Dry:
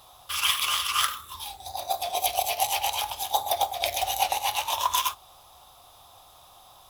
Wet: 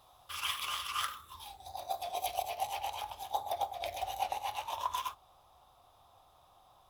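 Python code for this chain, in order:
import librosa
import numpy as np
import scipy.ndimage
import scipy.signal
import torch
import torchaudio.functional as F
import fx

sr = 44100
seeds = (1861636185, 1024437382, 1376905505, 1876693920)

y = fx.high_shelf(x, sr, hz=2500.0, db=fx.steps((0.0, -7.0), (2.41, -12.0)))
y = y * librosa.db_to_amplitude(-7.5)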